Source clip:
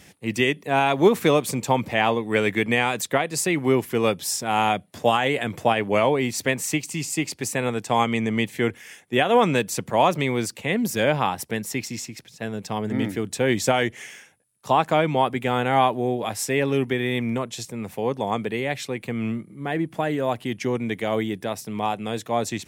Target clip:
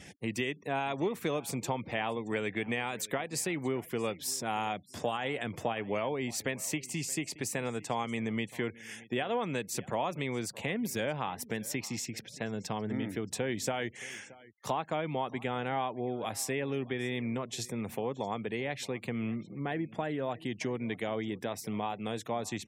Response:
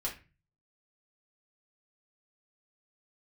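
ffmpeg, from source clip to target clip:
-af "acompressor=threshold=0.02:ratio=3,aecho=1:1:624|1248:0.0891|0.0187,afftfilt=real='re*gte(hypot(re,im),0.00178)':imag='im*gte(hypot(re,im),0.00178)':win_size=1024:overlap=0.75"

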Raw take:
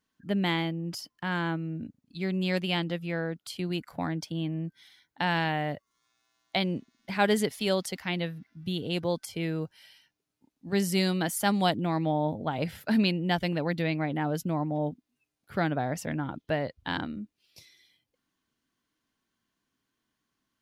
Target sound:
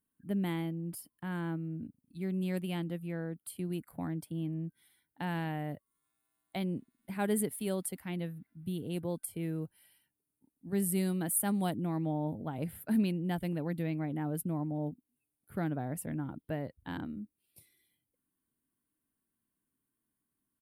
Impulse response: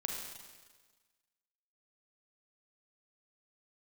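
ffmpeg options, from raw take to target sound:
-af "firequalizer=gain_entry='entry(300,0);entry(560,-6);entry(6000,-18);entry(8900,8)':delay=0.05:min_phase=1,volume=0.631"

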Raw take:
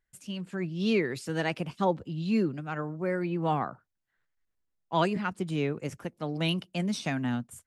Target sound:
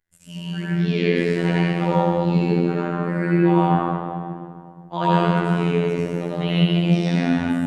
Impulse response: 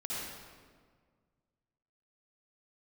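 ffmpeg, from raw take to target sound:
-filter_complex "[1:a]atrim=start_sample=2205,asetrate=31752,aresample=44100[s0];[0:a][s0]afir=irnorm=-1:irlink=0,acrossover=split=4500[s1][s2];[s2]acompressor=threshold=0.00178:ratio=4:attack=1:release=60[s3];[s1][s3]amix=inputs=2:normalize=0,afftfilt=real='hypot(re,im)*cos(PI*b)':imag='0':win_size=2048:overlap=0.75,volume=2.11"

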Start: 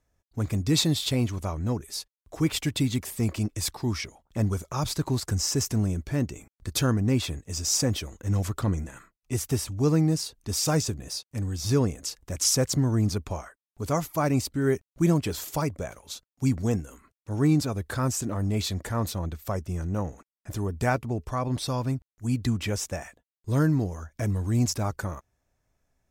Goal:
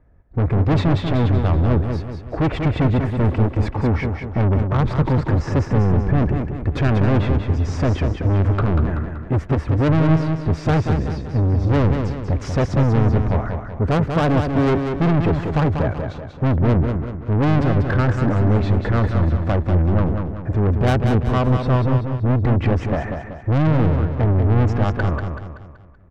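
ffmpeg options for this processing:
-filter_complex "[0:a]tiltshelf=f=830:g=8.5,acontrast=67,lowpass=f=1800:t=q:w=1.7,asoftclip=type=tanh:threshold=0.1,asplit=2[s0][s1];[s1]aecho=0:1:190|380|570|760|950:0.501|0.226|0.101|0.0457|0.0206[s2];[s0][s2]amix=inputs=2:normalize=0,volume=1.78"

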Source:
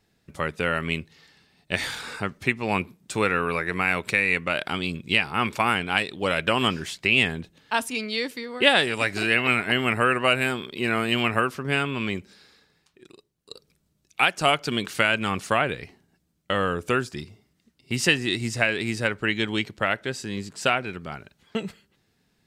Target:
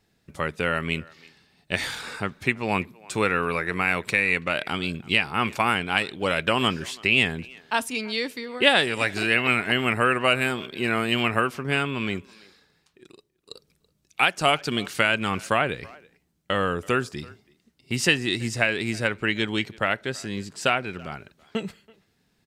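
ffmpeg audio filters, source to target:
-filter_complex "[0:a]asplit=2[s0][s1];[s1]adelay=330,highpass=300,lowpass=3400,asoftclip=type=hard:threshold=0.282,volume=0.0708[s2];[s0][s2]amix=inputs=2:normalize=0"

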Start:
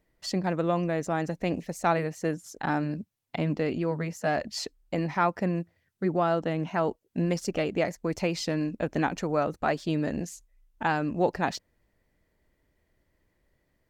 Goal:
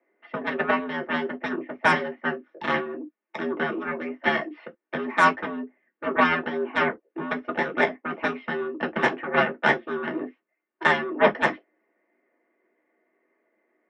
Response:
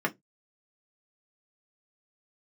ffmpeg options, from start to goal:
-filter_complex "[0:a]highpass=f=210:t=q:w=0.5412,highpass=f=210:t=q:w=1.307,lowpass=f=2600:t=q:w=0.5176,lowpass=f=2600:t=q:w=0.7071,lowpass=f=2600:t=q:w=1.932,afreqshift=83,aeval=exprs='0.266*(cos(1*acos(clip(val(0)/0.266,-1,1)))-cos(1*PI/2))+0.0531*(cos(2*acos(clip(val(0)/0.266,-1,1)))-cos(2*PI/2))+0.0668*(cos(7*acos(clip(val(0)/0.266,-1,1)))-cos(7*PI/2))':c=same[s0];[1:a]atrim=start_sample=2205,atrim=end_sample=3528[s1];[s0][s1]afir=irnorm=-1:irlink=0,volume=0.75"

